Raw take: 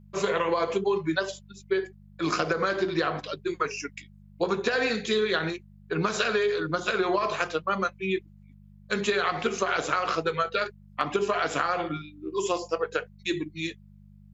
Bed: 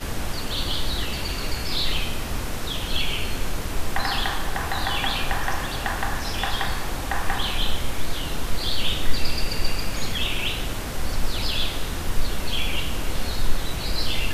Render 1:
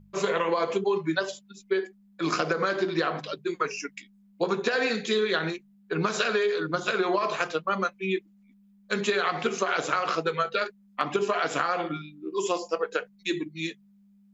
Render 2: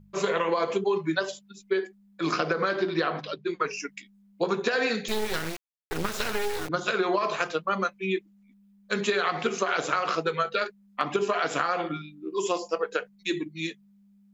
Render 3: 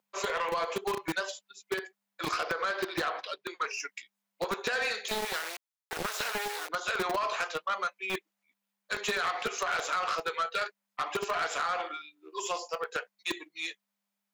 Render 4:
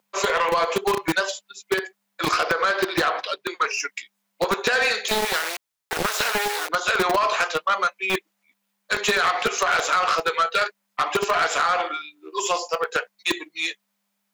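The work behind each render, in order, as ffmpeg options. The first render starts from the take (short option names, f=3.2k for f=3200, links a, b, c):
-af "bandreject=f=50:t=h:w=4,bandreject=f=100:t=h:w=4,bandreject=f=150:t=h:w=4"
-filter_complex "[0:a]asettb=1/sr,asplit=3[a][b][c];[a]atrim=end=2.324[d];[b]atrim=start=2.32:end=3.73,asetpts=PTS-STARTPTS,afade=t=in:d=0.004:c=qsin,afade=t=out:st=1.406:d=0.004:c=qsin,lowpass=f=5.5k:w=0.5412,lowpass=f=5.5k:w=1.3066[e];[c]atrim=start=3.726[f];[d][e]acrossfade=d=0.004:c1=hsin:c2=qsin[g];[g][f]acrossfade=d=0.004:c1=qsin:c2=hsin,asettb=1/sr,asplit=3[h][i][j];[h]atrim=end=5.084[k];[i]atrim=start=5.08:end=6.69,asetpts=PTS-STARTPTS,afade=t=in:d=0.004:c=qsin,afade=t=out:st=1.606:d=0.004:c=qsin,acrusher=bits=3:dc=4:mix=0:aa=0.000001[l];[j]atrim=start=6.686[m];[k][l]acrossfade=d=0.004:c1=hsin:c2=qsin[n];[n][m]acrossfade=d=0.004:c1=qsin:c2=hsin"
-filter_complex "[0:a]acrossover=split=520|2300[a][b][c];[a]acrusher=bits=3:mix=0:aa=0.000001[d];[d][b][c]amix=inputs=3:normalize=0,asoftclip=type=tanh:threshold=-24dB"
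-af "volume=10dB"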